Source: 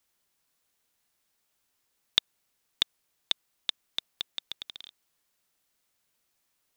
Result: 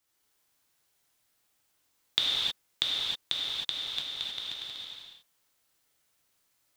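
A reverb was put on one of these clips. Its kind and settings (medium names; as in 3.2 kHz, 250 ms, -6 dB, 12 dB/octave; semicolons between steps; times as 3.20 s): gated-style reverb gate 340 ms flat, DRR -6 dB; trim -4 dB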